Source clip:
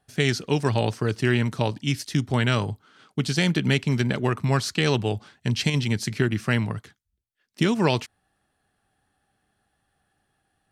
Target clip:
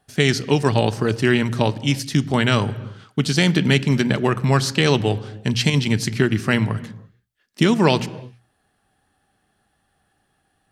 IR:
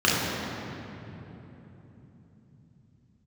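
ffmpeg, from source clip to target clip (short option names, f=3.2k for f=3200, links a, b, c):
-filter_complex "[0:a]bandreject=f=60:t=h:w=6,bandreject=f=120:t=h:w=6,asplit=2[a][b];[1:a]atrim=start_sample=2205,afade=t=out:st=0.39:d=0.01,atrim=end_sample=17640[c];[b][c]afir=irnorm=-1:irlink=0,volume=-34.5dB[d];[a][d]amix=inputs=2:normalize=0,volume=5dB"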